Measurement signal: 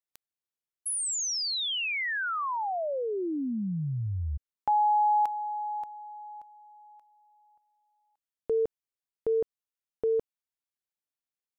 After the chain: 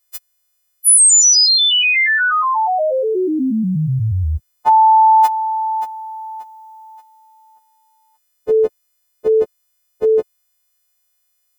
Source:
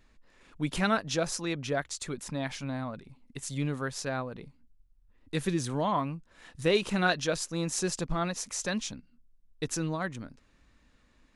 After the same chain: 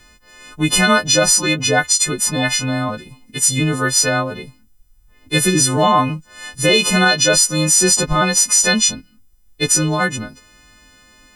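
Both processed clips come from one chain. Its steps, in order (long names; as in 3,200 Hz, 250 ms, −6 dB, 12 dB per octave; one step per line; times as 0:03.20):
every partial snapped to a pitch grid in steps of 3 semitones
boost into a limiter +16.5 dB
level −2.5 dB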